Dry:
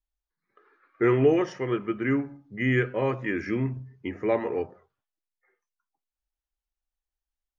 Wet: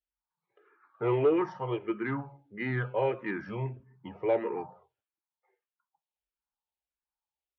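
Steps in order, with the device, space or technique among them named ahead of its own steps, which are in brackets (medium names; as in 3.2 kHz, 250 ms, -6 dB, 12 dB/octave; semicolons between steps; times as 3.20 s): barber-pole phaser into a guitar amplifier (barber-pole phaser -1.6 Hz; saturation -16.5 dBFS, distortion -17 dB; cabinet simulation 81–3700 Hz, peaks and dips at 91 Hz -7 dB, 260 Hz -9 dB, 900 Hz +10 dB, 1.9 kHz -6 dB)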